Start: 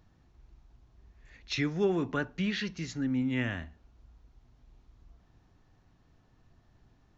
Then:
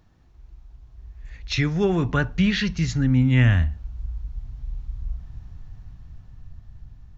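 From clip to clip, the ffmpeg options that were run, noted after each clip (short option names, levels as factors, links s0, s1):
-af "asubboost=boost=10.5:cutoff=110,dynaudnorm=f=350:g=9:m=1.88,volume=1.58"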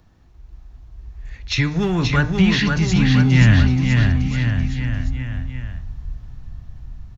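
-filter_complex "[0:a]bandreject=f=151:t=h:w=4,bandreject=f=302:t=h:w=4,bandreject=f=453:t=h:w=4,bandreject=f=604:t=h:w=4,bandreject=f=755:t=h:w=4,bandreject=f=906:t=h:w=4,bandreject=f=1057:t=h:w=4,bandreject=f=1208:t=h:w=4,bandreject=f=1359:t=h:w=4,bandreject=f=1510:t=h:w=4,bandreject=f=1661:t=h:w=4,bandreject=f=1812:t=h:w=4,bandreject=f=1963:t=h:w=4,bandreject=f=2114:t=h:w=4,bandreject=f=2265:t=h:w=4,bandreject=f=2416:t=h:w=4,bandreject=f=2567:t=h:w=4,bandreject=f=2718:t=h:w=4,bandreject=f=2869:t=h:w=4,bandreject=f=3020:t=h:w=4,bandreject=f=3171:t=h:w=4,bandreject=f=3322:t=h:w=4,bandreject=f=3473:t=h:w=4,bandreject=f=3624:t=h:w=4,bandreject=f=3775:t=h:w=4,bandreject=f=3926:t=h:w=4,bandreject=f=4077:t=h:w=4,bandreject=f=4228:t=h:w=4,bandreject=f=4379:t=h:w=4,bandreject=f=4530:t=h:w=4,acrossover=split=280|750|2500[s0][s1][s2][s3];[s1]asoftclip=type=hard:threshold=0.0188[s4];[s0][s4][s2][s3]amix=inputs=4:normalize=0,aecho=1:1:530|1007|1436|1823|2170:0.631|0.398|0.251|0.158|0.1,volume=1.68"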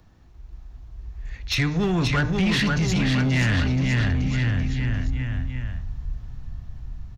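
-filter_complex "[0:a]acrossover=split=300[s0][s1];[s0]alimiter=limit=0.188:level=0:latency=1[s2];[s2][s1]amix=inputs=2:normalize=0,asoftclip=type=tanh:threshold=0.158"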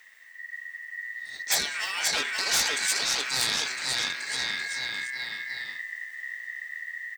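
-af "aeval=exprs='val(0)*sin(2*PI*1900*n/s)':c=same,aemphasis=mode=production:type=riaa,afftfilt=real='re*lt(hypot(re,im),0.224)':imag='im*lt(hypot(re,im),0.224)':win_size=1024:overlap=0.75"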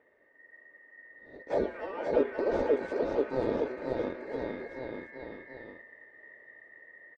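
-af "lowpass=f=470:t=q:w=5.4,aecho=1:1:3.3:0.47,volume=2.11"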